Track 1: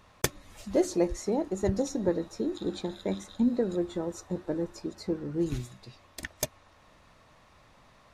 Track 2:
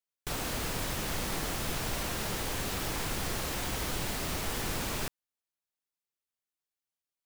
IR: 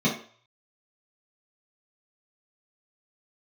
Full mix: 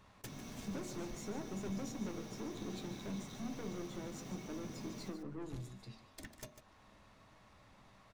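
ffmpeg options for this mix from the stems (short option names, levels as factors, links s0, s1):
-filter_complex "[0:a]acompressor=threshold=0.00891:ratio=1.5,aeval=exprs='(tanh(89.1*val(0)+0.45)-tanh(0.45))/89.1':c=same,volume=0.668,asplit=4[s0][s1][s2][s3];[s1]volume=0.075[s4];[s2]volume=0.266[s5];[1:a]equalizer=f=5800:w=4.4:g=10,alimiter=level_in=2.51:limit=0.0631:level=0:latency=1,volume=0.398,asoftclip=type=tanh:threshold=0.0141,volume=0.355,asplit=3[s6][s7][s8];[s7]volume=0.224[s9];[s8]volume=0.188[s10];[s3]apad=whole_len=320017[s11];[s6][s11]sidechaincompress=threshold=0.00355:ratio=8:attack=8.9:release=1290[s12];[2:a]atrim=start_sample=2205[s13];[s4][s9]amix=inputs=2:normalize=0[s14];[s14][s13]afir=irnorm=-1:irlink=0[s15];[s5][s10]amix=inputs=2:normalize=0,aecho=0:1:148:1[s16];[s0][s12][s15][s16]amix=inputs=4:normalize=0"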